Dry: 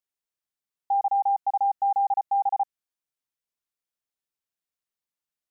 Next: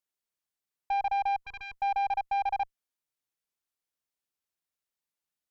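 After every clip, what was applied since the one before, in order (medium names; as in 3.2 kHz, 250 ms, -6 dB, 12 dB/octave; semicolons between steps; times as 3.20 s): valve stage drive 25 dB, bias 0.2; time-frequency box 1.46–1.77 s, 480–990 Hz -22 dB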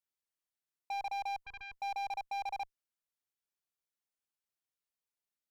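hard clipper -30 dBFS, distortion -14 dB; trim -5.5 dB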